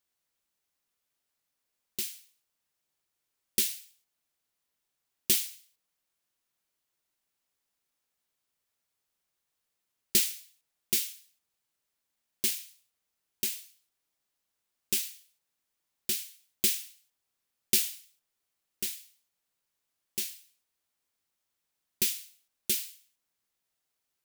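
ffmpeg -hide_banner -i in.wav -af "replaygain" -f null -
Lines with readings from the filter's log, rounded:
track_gain = +19.0 dB
track_peak = 0.241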